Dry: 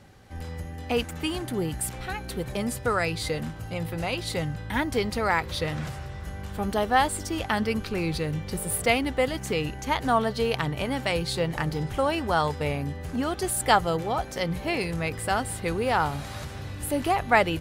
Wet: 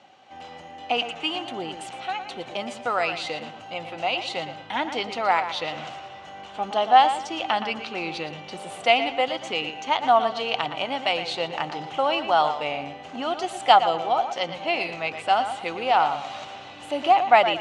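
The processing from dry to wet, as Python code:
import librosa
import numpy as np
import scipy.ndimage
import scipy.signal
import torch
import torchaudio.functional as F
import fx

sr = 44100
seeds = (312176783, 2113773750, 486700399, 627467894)

y = fx.cabinet(x, sr, low_hz=390.0, low_slope=12, high_hz=6100.0, hz=(440.0, 740.0, 1700.0, 2900.0, 5000.0), db=(-8, 8, -7, 7, -6))
y = fx.echo_tape(y, sr, ms=116, feedback_pct=32, wet_db=-9.0, lp_hz=4300.0, drive_db=6.0, wow_cents=40)
y = F.gain(torch.from_numpy(y), 2.0).numpy()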